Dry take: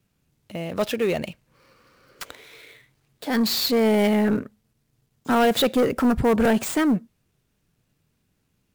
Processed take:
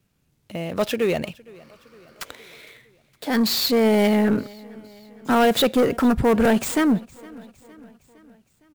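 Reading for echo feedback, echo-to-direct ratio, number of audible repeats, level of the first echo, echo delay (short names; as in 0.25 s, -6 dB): 56%, -22.0 dB, 3, -23.5 dB, 0.461 s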